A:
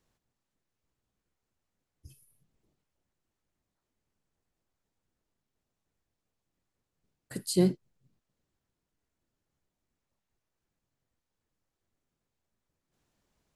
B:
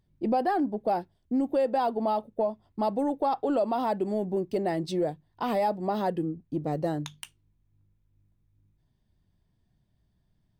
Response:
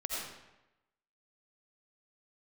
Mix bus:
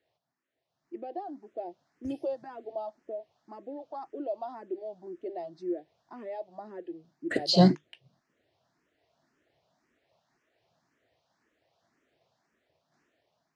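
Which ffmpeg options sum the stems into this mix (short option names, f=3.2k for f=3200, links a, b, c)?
-filter_complex "[0:a]dynaudnorm=f=180:g=11:m=14dB,volume=1.5dB,asplit=2[a][b];[1:a]equalizer=f=340:t=o:w=0.39:g=12.5,acrossover=split=620[c][d];[c]aeval=exprs='val(0)*(1-0.5/2+0.5/2*cos(2*PI*2*n/s))':c=same[e];[d]aeval=exprs='val(0)*(1-0.5/2-0.5/2*cos(2*PI*2*n/s))':c=same[f];[e][f]amix=inputs=2:normalize=0,adelay=700,volume=-7dB[g];[b]apad=whole_len=497962[h];[g][h]sidechaingate=range=-6dB:threshold=-52dB:ratio=16:detection=peak[i];[a][i]amix=inputs=2:normalize=0,highpass=160,equalizer=f=200:t=q:w=4:g=-6,equalizer=f=660:t=q:w=4:g=10,equalizer=f=1.8k:t=q:w=4:g=5,lowpass=f=5.6k:w=0.5412,lowpass=f=5.6k:w=1.3066,asplit=2[j][k];[k]afreqshift=1.9[l];[j][l]amix=inputs=2:normalize=1"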